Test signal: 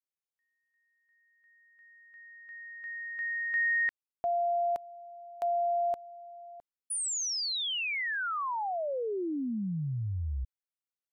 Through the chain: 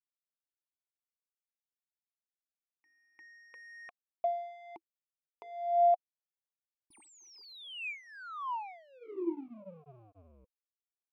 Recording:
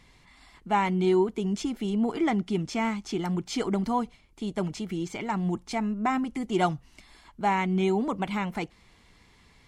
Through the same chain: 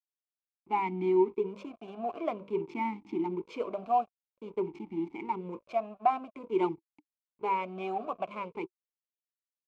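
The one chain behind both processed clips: hum notches 50/100/150/200/250/300/350/400/450/500 Hz; hysteresis with a dead band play -32 dBFS; talking filter a-u 0.5 Hz; trim +7.5 dB

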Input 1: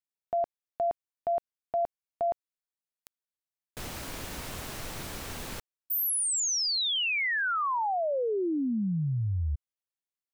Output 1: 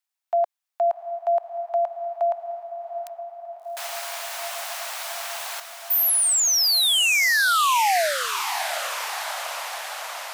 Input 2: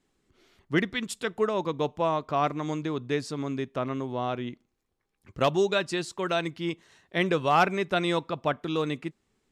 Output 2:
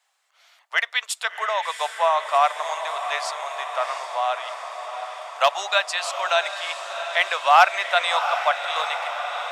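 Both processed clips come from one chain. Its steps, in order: steep high-pass 640 Hz 48 dB/octave; echo that smears into a reverb 716 ms, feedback 70%, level -9 dB; trim +8.5 dB

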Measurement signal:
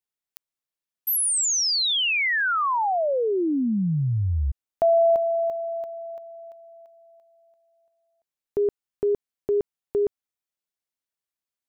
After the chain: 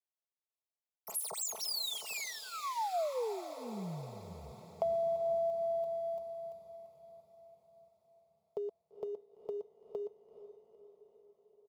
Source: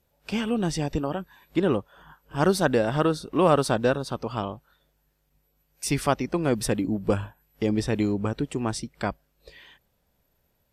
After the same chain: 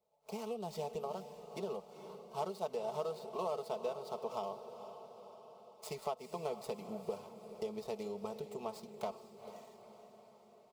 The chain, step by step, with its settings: median filter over 15 samples; high-pass 280 Hz 12 dB/octave; comb 4.6 ms, depth 63%; compression 10:1, threshold -28 dBFS; static phaser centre 680 Hz, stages 4; echo that smears into a reverb 459 ms, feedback 60%, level -11 dB; trim -3.5 dB

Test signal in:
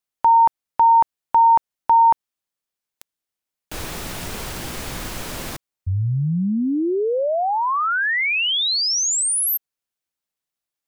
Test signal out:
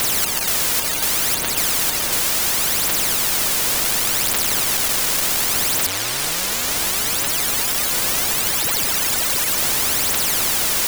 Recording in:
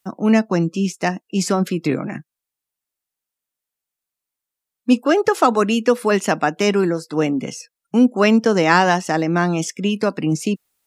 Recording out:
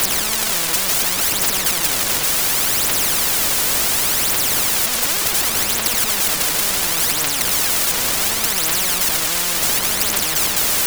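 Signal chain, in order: one-bit comparator; wind noise 560 Hz -25 dBFS; in parallel at -4.5 dB: decimation with a swept rate 14×, swing 60% 2.3 Hz; on the sum: phaser 0.69 Hz, delay 2.1 ms, feedback 75%; on a send: repeats whose band climbs or falls 535 ms, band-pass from 3.1 kHz, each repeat -0.7 oct, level -10 dB; on the sum: spectrum-flattening compressor 10:1; trim -7 dB

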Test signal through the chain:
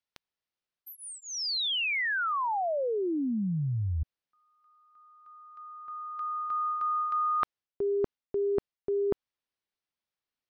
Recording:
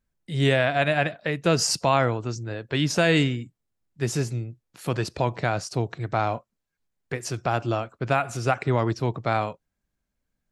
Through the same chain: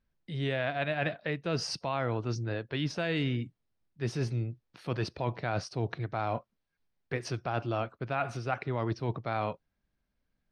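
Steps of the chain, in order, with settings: reverse; compression 6:1, threshold -28 dBFS; reverse; Savitzky-Golay filter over 15 samples

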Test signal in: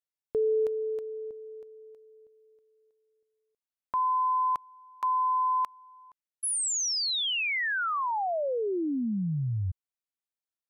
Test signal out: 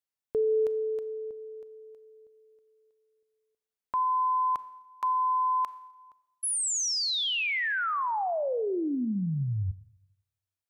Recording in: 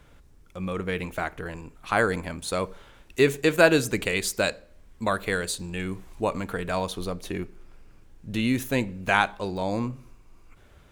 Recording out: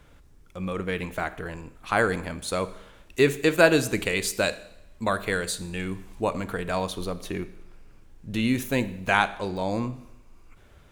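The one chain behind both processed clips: Schroeder reverb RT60 0.85 s, combs from 28 ms, DRR 15 dB

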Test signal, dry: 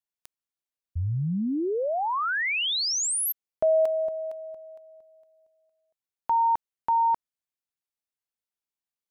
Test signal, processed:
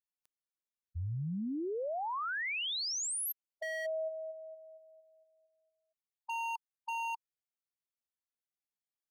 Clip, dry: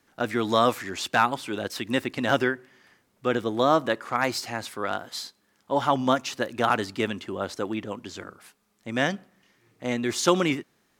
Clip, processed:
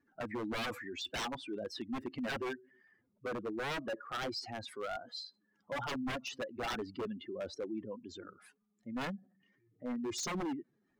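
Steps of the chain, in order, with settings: spectral contrast enhancement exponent 2.4; wavefolder -23 dBFS; trim -9 dB

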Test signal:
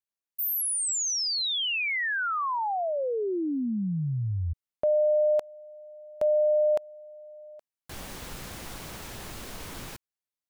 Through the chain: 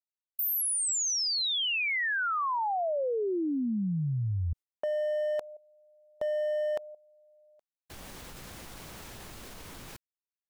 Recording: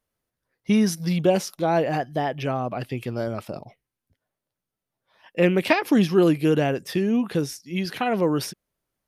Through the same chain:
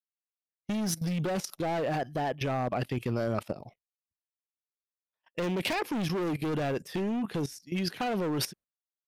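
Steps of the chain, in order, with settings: expander -40 dBFS; hard clipper -21.5 dBFS; level held to a coarse grid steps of 16 dB; trim +2.5 dB

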